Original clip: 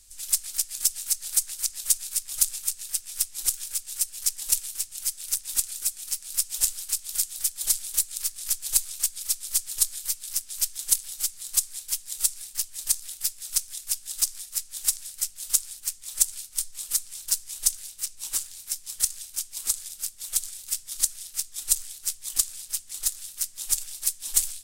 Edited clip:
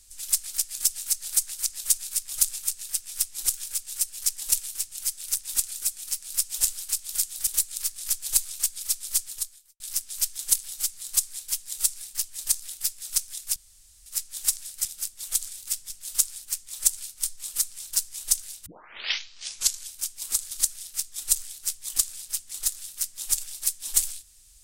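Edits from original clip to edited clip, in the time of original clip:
7.47–7.87 cut
9.6–10.2 fade out quadratic
13.96–14.46 room tone
18.01 tape start 1.26 s
19.86–20.91 move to 15.25

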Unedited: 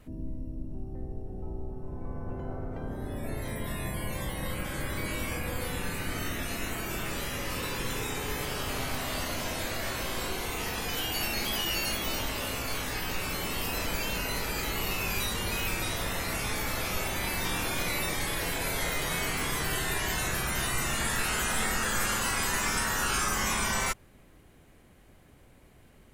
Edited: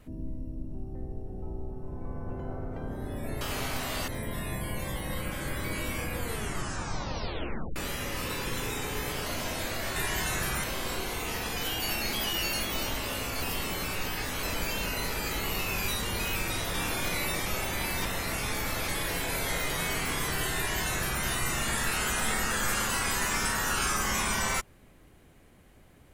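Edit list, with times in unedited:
5.51 tape stop 1.58 s
8.59–9.26 move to 3.41
12.74–13.75 reverse
16.06–16.89 swap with 17.48–18.2
19.88–20.56 copy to 9.96

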